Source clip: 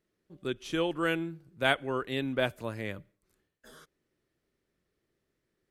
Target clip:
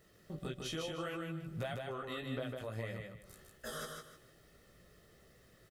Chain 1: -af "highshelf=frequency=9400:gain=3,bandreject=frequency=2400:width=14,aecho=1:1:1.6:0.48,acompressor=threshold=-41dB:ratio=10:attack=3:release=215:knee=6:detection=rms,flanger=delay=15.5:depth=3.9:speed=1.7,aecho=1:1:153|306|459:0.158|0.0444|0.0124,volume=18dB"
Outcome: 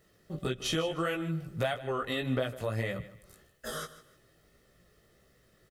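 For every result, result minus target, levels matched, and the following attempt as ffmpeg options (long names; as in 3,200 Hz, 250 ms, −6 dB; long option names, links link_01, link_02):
downward compressor: peak gain reduction −10.5 dB; echo-to-direct −12 dB
-af "highshelf=frequency=9400:gain=3,bandreject=frequency=2400:width=14,aecho=1:1:1.6:0.48,acompressor=threshold=-52.5dB:ratio=10:attack=3:release=215:knee=6:detection=rms,flanger=delay=15.5:depth=3.9:speed=1.7,aecho=1:1:153|306|459:0.158|0.0444|0.0124,volume=18dB"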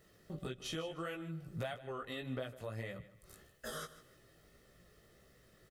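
echo-to-direct −12 dB
-af "highshelf=frequency=9400:gain=3,bandreject=frequency=2400:width=14,aecho=1:1:1.6:0.48,acompressor=threshold=-52.5dB:ratio=10:attack=3:release=215:knee=6:detection=rms,flanger=delay=15.5:depth=3.9:speed=1.7,aecho=1:1:153|306|459|612:0.631|0.177|0.0495|0.0139,volume=18dB"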